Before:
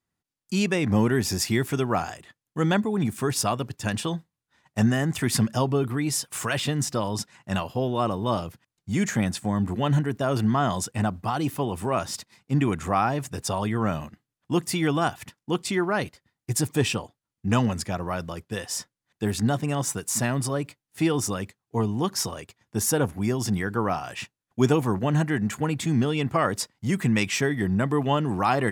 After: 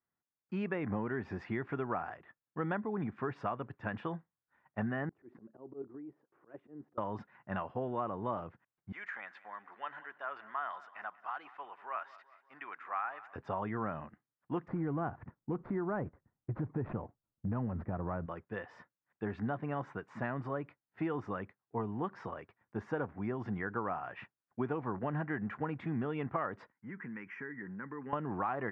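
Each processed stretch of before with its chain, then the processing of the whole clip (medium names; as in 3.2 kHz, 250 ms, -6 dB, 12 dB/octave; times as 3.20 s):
5.09–6.98 s: band-pass filter 350 Hz, Q 2.9 + level held to a coarse grid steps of 9 dB + slow attack 101 ms
8.92–13.36 s: high-pass 1.3 kHz + feedback delay 188 ms, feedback 52%, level -19 dB
14.68–18.26 s: median filter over 15 samples + tilt EQ -3.5 dB/octave + compression 2.5:1, threshold -20 dBFS
26.72–28.13 s: cabinet simulation 240–7400 Hz, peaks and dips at 350 Hz -4 dB, 1.2 kHz -7 dB, 2.7 kHz -5 dB, 4.2 kHz -7 dB + static phaser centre 1.6 kHz, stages 4 + compression 5:1, threshold -30 dBFS
whole clip: low-pass 1.7 kHz 24 dB/octave; tilt EQ +2.5 dB/octave; compression, threshold -26 dBFS; trim -5 dB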